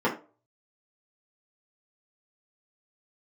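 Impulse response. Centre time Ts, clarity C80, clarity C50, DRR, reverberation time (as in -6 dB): 18 ms, 17.0 dB, 10.5 dB, -7.0 dB, 0.35 s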